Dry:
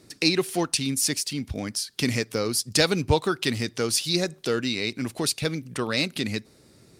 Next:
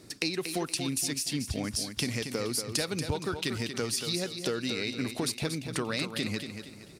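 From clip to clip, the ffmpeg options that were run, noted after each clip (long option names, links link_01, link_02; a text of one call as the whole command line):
ffmpeg -i in.wav -filter_complex "[0:a]acompressor=threshold=-30dB:ratio=6,asplit=2[link_01][link_02];[link_02]aecho=0:1:234|468|702|936:0.398|0.151|0.0575|0.0218[link_03];[link_01][link_03]amix=inputs=2:normalize=0,volume=1.5dB" out.wav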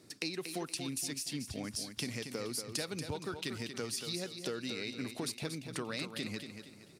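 ffmpeg -i in.wav -af "highpass=97,volume=-7dB" out.wav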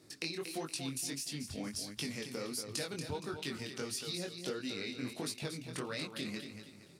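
ffmpeg -i in.wav -af "flanger=delay=19:depth=5.1:speed=1.5,volume=2dB" out.wav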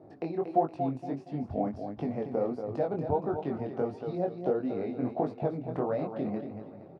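ffmpeg -i in.wav -af "lowpass=frequency=720:width_type=q:width=4.9,aecho=1:1:813:0.0631,volume=7.5dB" out.wav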